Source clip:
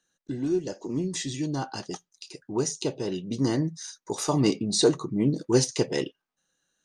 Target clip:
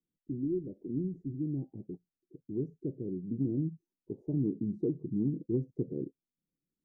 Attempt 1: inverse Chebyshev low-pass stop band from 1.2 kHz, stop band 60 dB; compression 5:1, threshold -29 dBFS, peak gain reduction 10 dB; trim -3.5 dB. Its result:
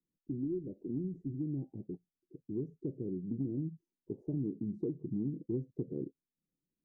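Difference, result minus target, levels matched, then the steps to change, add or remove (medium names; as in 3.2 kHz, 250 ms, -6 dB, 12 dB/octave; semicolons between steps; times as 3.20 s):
compression: peak gain reduction +5 dB
change: compression 5:1, threshold -22.5 dBFS, peak gain reduction 5 dB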